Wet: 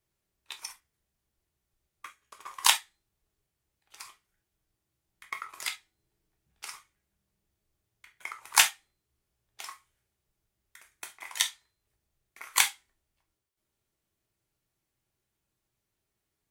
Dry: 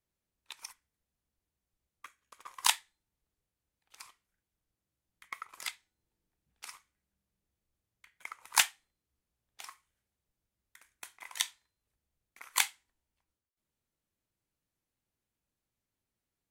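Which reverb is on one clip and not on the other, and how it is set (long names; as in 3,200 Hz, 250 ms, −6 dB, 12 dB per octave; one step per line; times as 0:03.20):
reverb whose tail is shaped and stops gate 90 ms falling, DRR 4 dB
level +4 dB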